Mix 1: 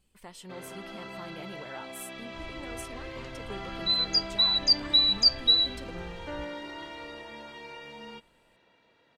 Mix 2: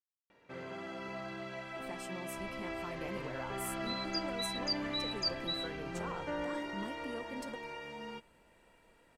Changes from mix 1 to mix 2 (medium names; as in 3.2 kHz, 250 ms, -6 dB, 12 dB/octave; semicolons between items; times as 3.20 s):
speech: entry +1.65 s; second sound -10.0 dB; master: add peaking EQ 3.7 kHz -8 dB 0.65 oct